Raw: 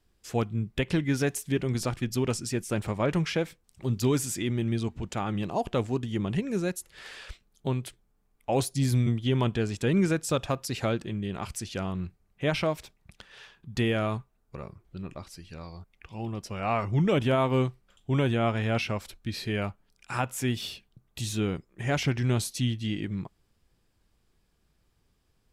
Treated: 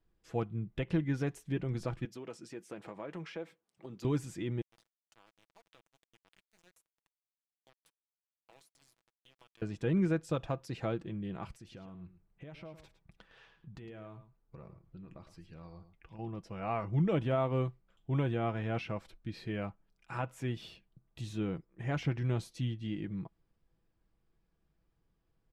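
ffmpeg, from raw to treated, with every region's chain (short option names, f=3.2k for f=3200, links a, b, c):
-filter_complex "[0:a]asettb=1/sr,asplit=3[a][b][c];[a]atrim=end=2.054[d];[b]atrim=start=2.05:end=4.05,asetpts=PTS-STARTPTS,afade=t=in:d=0.004:c=qsin,afade=t=out:st=1.996:d=0.004:c=qsin,highpass=280,acompressor=threshold=-34dB:ratio=2.5:attack=3.2:release=140:knee=1:detection=peak[e];[c]atrim=start=4.046[f];[d][e]acrossfade=d=0.004:c1=hsin:c2=qsin[g];[g][f]acrossfade=d=0.004:c1=qsin:c2=hsin,asettb=1/sr,asplit=3[h][i][j];[h]atrim=end=4.614[k];[i]atrim=start=4.61:end=9.62,asetpts=PTS-STARTPTS,afade=t=in:d=0.004:c=qsin,afade=t=out:st=5.006:d=0.004:c=qsin,aderivative,aeval=exprs='val(0)*gte(abs(val(0)),0.00841)':c=same,acompressor=threshold=-45dB:ratio=6:attack=3.2:release=140:knee=1:detection=peak[l];[j]atrim=start=9.616[m];[k][l]acrossfade=d=0.004:c1=hsin:c2=qsin[n];[n][m]acrossfade=d=0.004:c1=qsin:c2=hsin,asettb=1/sr,asplit=3[o][p][q];[o]atrim=end=11.524[r];[p]atrim=start=11.52:end=16.19,asetpts=PTS-STARTPTS,afade=t=in:d=0.004:c=qsin,afade=t=out:st=4.666:d=0.004:c=qsin,acompressor=threshold=-38dB:ratio=10:attack=3.2:release=140:knee=1:detection=peak,aecho=1:1:109:0.251,atrim=end_sample=205947[s];[q]atrim=start=16.186[t];[r][s]acrossfade=d=0.004:c1=hsin:c2=qsin[u];[u][t]acrossfade=d=0.004:c1=qsin:c2=hsin,lowpass=f=1.5k:p=1,aecho=1:1:6.1:0.37,volume=-6.5dB"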